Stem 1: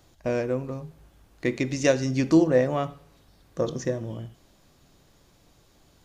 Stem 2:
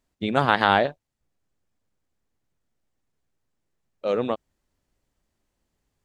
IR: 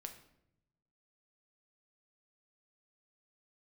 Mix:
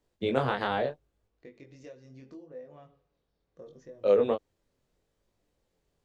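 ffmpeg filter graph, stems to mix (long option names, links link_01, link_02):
-filter_complex "[0:a]lowpass=5100,acompressor=threshold=-26dB:ratio=6,volume=-19.5dB[link_01];[1:a]acrossover=split=140[link_02][link_03];[link_03]acompressor=threshold=-21dB:ratio=10[link_04];[link_02][link_04]amix=inputs=2:normalize=0,volume=-1dB,asplit=3[link_05][link_06][link_07];[link_05]atrim=end=1.28,asetpts=PTS-STARTPTS,afade=type=out:start_time=1.276:duration=0.004:curve=hsin[link_08];[link_06]atrim=start=1.28:end=3.62,asetpts=PTS-STARTPTS,volume=0[link_09];[link_07]atrim=start=3.62,asetpts=PTS-STARTPTS,afade=type=in:duration=0.004:curve=hsin[link_10];[link_08][link_09][link_10]concat=n=3:v=0:a=1[link_11];[link_01][link_11]amix=inputs=2:normalize=0,flanger=delay=19.5:depth=4.6:speed=0.75,equalizer=frequency=470:width=2.6:gain=8.5"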